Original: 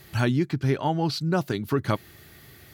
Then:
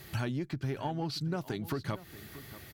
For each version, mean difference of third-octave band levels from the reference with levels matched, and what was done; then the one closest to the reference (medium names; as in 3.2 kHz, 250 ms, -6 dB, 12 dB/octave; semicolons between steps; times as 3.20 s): 5.5 dB: single-diode clipper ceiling -11 dBFS; compression 5:1, threshold -32 dBFS, peak gain reduction 11.5 dB; delay 632 ms -16 dB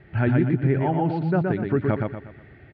10.0 dB: low-pass 2.1 kHz 24 dB/octave; peaking EQ 1.1 kHz -10 dB 0.47 oct; on a send: feedback delay 120 ms, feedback 37%, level -3.5 dB; on the sum: trim +2 dB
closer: first